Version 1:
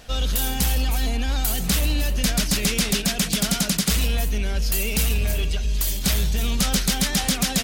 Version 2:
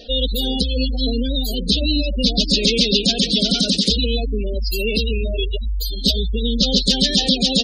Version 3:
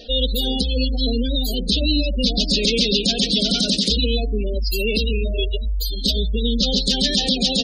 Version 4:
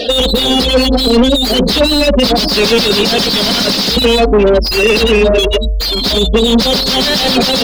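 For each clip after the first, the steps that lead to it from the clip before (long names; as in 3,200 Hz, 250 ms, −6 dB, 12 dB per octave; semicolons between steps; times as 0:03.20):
octave-band graphic EQ 125/250/500/1,000/4,000 Hz −12/+9/+11/−10/+12 dB; gate on every frequency bin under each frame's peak −15 dB strong; level +1.5 dB
brickwall limiter −7 dBFS, peak gain reduction 5.5 dB; hum removal 88.47 Hz, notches 10
dynamic equaliser 5,000 Hz, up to +7 dB, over −36 dBFS, Q 3.1; mid-hump overdrive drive 34 dB, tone 1,400 Hz, clips at −2 dBFS; level +3 dB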